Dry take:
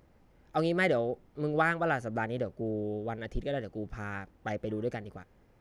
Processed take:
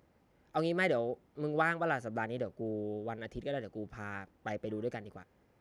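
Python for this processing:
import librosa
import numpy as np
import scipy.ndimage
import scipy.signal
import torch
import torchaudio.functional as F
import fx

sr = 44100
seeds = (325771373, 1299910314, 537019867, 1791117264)

y = scipy.signal.sosfilt(scipy.signal.butter(2, 48.0, 'highpass', fs=sr, output='sos'), x)
y = fx.low_shelf(y, sr, hz=100.0, db=-6.5)
y = y * librosa.db_to_amplitude(-3.0)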